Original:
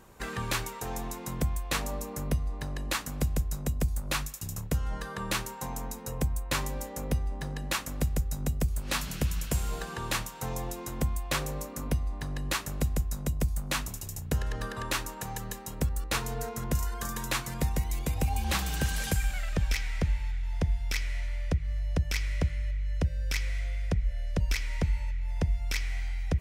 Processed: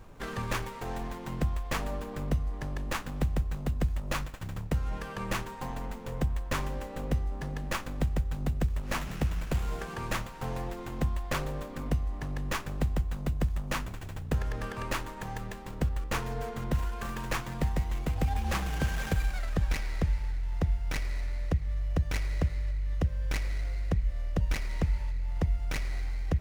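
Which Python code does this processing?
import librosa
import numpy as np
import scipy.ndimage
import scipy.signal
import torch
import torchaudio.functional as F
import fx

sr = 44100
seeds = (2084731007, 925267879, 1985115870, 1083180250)

y = fx.dmg_noise_colour(x, sr, seeds[0], colour='brown', level_db=-50.0)
y = fx.running_max(y, sr, window=9)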